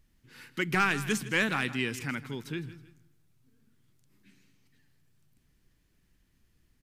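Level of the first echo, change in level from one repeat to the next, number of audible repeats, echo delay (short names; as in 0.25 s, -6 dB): -15.5 dB, -9.0 dB, 2, 0.16 s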